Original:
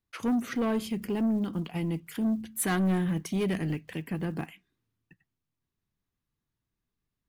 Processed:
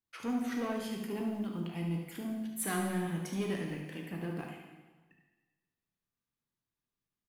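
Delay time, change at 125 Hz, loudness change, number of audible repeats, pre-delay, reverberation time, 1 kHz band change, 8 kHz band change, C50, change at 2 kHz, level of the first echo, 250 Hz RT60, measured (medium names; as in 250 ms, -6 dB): 72 ms, -6.5 dB, -6.5 dB, 1, 6 ms, 1.3 s, -4.0 dB, -4.0 dB, 2.5 dB, -4.5 dB, -9.5 dB, 1.3 s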